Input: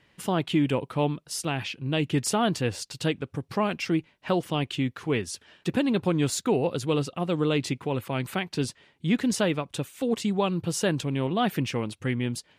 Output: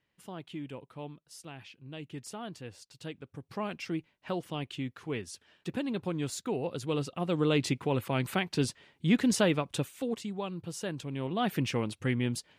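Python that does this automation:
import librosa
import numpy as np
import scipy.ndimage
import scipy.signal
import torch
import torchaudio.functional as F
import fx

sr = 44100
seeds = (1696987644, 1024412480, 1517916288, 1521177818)

y = fx.gain(x, sr, db=fx.line((2.86, -17.0), (3.67, -9.0), (6.54, -9.0), (7.64, -1.0), (9.82, -1.0), (10.27, -11.0), (10.94, -11.0), (11.68, -2.0)))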